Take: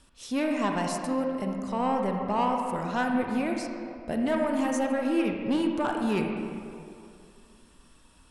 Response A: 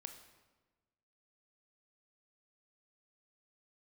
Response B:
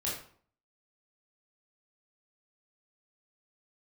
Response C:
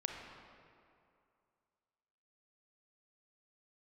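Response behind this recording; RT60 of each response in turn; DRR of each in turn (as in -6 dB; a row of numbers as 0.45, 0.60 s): C; 1.3, 0.55, 2.5 s; 6.5, -6.0, 1.5 dB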